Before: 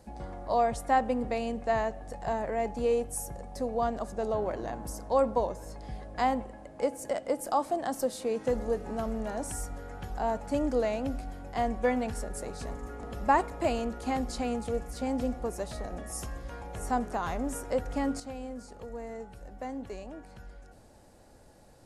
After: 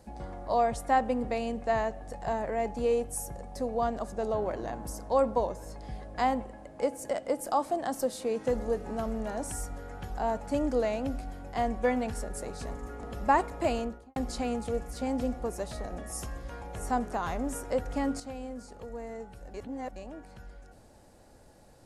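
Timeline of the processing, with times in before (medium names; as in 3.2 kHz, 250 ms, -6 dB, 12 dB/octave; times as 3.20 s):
13.76–14.16 s: studio fade out
19.54–19.96 s: reverse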